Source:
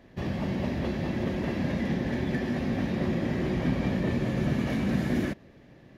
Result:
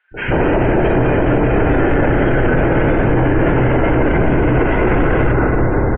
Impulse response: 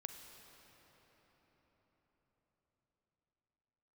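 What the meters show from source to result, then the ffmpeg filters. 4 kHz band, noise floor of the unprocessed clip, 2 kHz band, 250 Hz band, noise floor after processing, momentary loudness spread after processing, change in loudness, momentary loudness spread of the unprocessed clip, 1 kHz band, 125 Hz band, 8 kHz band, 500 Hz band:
+7.0 dB, -54 dBFS, +17.5 dB, +11.5 dB, -18 dBFS, 1 LU, +14.5 dB, 3 LU, +20.5 dB, +14.0 dB, n/a, +18.5 dB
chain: -filter_complex "[0:a]highpass=f=130:w=0.5412,highpass=f=130:w=1.3066,equalizer=f=800:t=o:w=2.7:g=12.5,acrossover=split=400|1900[a][b][c];[a]adelay=110[d];[b]adelay=140[e];[d][e][c]amix=inputs=3:normalize=0,acontrast=46[f];[1:a]atrim=start_sample=2205[g];[f][g]afir=irnorm=-1:irlink=0,highpass=f=240:t=q:w=0.5412,highpass=f=240:t=q:w=1.307,lowpass=f=3.1k:t=q:w=0.5176,lowpass=f=3.1k:t=q:w=0.7071,lowpass=f=3.1k:t=q:w=1.932,afreqshift=-240,afftdn=nr=24:nf=-50,alimiter=level_in=25.5dB:limit=-1dB:release=50:level=0:latency=1,volume=-5dB"

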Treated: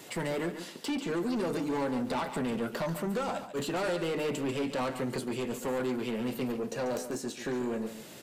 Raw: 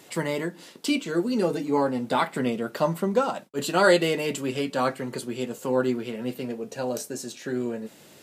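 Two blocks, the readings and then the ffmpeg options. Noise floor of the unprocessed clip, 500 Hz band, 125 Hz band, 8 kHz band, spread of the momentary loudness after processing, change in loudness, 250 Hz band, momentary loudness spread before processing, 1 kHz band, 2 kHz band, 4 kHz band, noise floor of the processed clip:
-51 dBFS, -7.0 dB, -5.0 dB, -6.0 dB, 4 LU, -6.5 dB, -5.0 dB, 12 LU, -8.0 dB, -8.5 dB, -7.0 dB, -47 dBFS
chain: -filter_complex "[0:a]acrossover=split=1200|2500[a][b][c];[a]acompressor=threshold=-26dB:ratio=4[d];[b]acompressor=threshold=-43dB:ratio=4[e];[c]acompressor=threshold=-45dB:ratio=4[f];[d][e][f]amix=inputs=3:normalize=0,asoftclip=type=tanh:threshold=-30.5dB,asplit=2[g][h];[h]aecho=0:1:141:0.299[i];[g][i]amix=inputs=2:normalize=0,volume=2.5dB"

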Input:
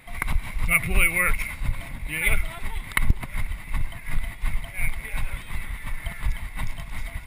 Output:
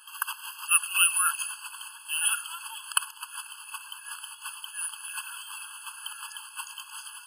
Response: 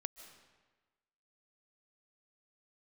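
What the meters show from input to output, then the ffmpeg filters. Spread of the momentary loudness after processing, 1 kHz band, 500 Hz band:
17 LU, +0.5 dB, under -40 dB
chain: -af "tiltshelf=f=1.1k:g=-10,afftfilt=real='re*eq(mod(floor(b*sr/1024/850),2),1)':imag='im*eq(mod(floor(b*sr/1024/850),2),1)':win_size=1024:overlap=0.75"

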